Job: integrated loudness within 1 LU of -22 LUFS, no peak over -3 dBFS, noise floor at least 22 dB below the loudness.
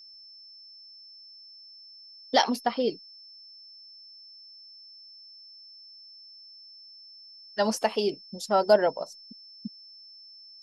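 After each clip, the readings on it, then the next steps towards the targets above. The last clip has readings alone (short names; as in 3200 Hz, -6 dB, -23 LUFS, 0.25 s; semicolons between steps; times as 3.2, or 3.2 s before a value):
steady tone 5300 Hz; tone level -47 dBFS; loudness -26.5 LUFS; peak -7.0 dBFS; loudness target -22.0 LUFS
-> notch 5300 Hz, Q 30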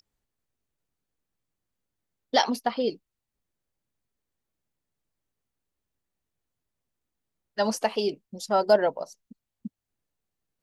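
steady tone none; loudness -26.0 LUFS; peak -7.5 dBFS; loudness target -22.0 LUFS
-> gain +4 dB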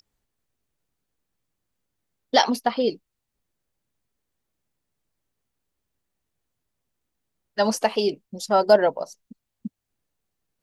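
loudness -22.0 LUFS; peak -3.5 dBFS; noise floor -81 dBFS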